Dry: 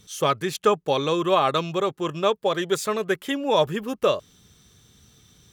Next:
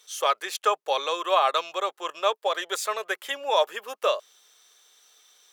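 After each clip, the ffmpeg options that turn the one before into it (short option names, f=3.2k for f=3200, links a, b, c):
-af "highpass=f=560:w=0.5412,highpass=f=560:w=1.3066"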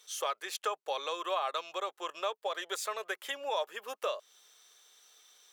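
-af "acompressor=threshold=-33dB:ratio=2,volume=-3dB"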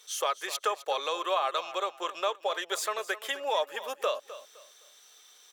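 -af "aecho=1:1:257|514|771:0.178|0.0516|0.015,volume=4.5dB"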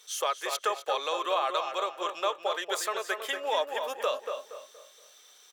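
-filter_complex "[0:a]asplit=2[a][b];[b]adelay=235,lowpass=f=1.9k:p=1,volume=-5.5dB,asplit=2[c][d];[d]adelay=235,lowpass=f=1.9k:p=1,volume=0.34,asplit=2[e][f];[f]adelay=235,lowpass=f=1.9k:p=1,volume=0.34,asplit=2[g][h];[h]adelay=235,lowpass=f=1.9k:p=1,volume=0.34[i];[a][c][e][g][i]amix=inputs=5:normalize=0"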